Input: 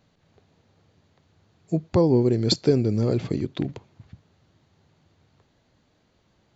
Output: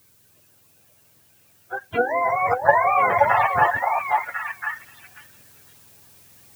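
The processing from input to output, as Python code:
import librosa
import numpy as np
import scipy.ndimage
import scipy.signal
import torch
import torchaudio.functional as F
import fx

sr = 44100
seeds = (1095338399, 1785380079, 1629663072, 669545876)

p1 = fx.octave_mirror(x, sr, pivot_hz=500.0)
p2 = fx.level_steps(p1, sr, step_db=18)
p3 = p1 + (p2 * 10.0 ** (-0.5 / 20.0))
p4 = fx.dmg_noise_colour(p3, sr, seeds[0], colour='blue', level_db=-55.0)
p5 = fx.rider(p4, sr, range_db=4, speed_s=0.5)
p6 = fx.spec_box(p5, sr, start_s=2.21, length_s=2.48, low_hz=690.0, high_hz=1900.0, gain_db=8)
p7 = fx.echo_stepped(p6, sr, ms=524, hz=710.0, octaves=1.4, feedback_pct=70, wet_db=-0.5)
p8 = fx.end_taper(p7, sr, db_per_s=520.0)
y = p8 * 10.0 ** (-1.0 / 20.0)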